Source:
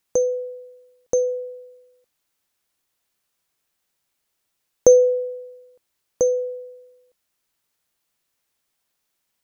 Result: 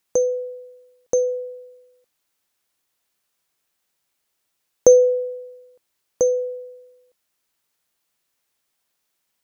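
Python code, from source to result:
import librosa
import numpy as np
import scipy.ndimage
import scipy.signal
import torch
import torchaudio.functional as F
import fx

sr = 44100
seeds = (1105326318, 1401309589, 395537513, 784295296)

y = fx.low_shelf(x, sr, hz=150.0, db=-4.5)
y = y * librosa.db_to_amplitude(1.0)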